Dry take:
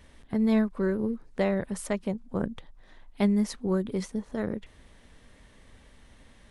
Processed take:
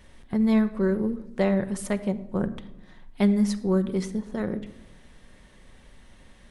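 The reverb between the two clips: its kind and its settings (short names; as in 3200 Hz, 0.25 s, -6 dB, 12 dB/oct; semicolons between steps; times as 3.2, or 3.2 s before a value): shoebox room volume 3400 m³, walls furnished, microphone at 0.98 m; gain +1.5 dB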